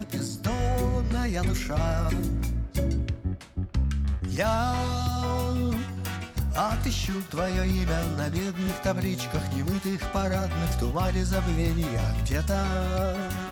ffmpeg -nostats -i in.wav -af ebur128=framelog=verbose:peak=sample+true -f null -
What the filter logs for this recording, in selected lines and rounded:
Integrated loudness:
  I:         -28.1 LUFS
  Threshold: -38.1 LUFS
Loudness range:
  LRA:         1.2 LU
  Threshold: -48.1 LUFS
  LRA low:   -28.5 LUFS
  LRA high:  -27.4 LUFS
Sample peak:
  Peak:      -13.1 dBFS
True peak:
  Peak:      -13.1 dBFS